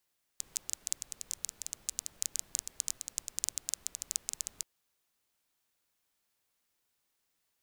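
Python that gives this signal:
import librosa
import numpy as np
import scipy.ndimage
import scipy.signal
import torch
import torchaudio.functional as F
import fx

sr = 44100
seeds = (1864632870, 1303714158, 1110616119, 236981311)

y = fx.rain(sr, seeds[0], length_s=4.23, drops_per_s=12.0, hz=7000.0, bed_db=-21.5)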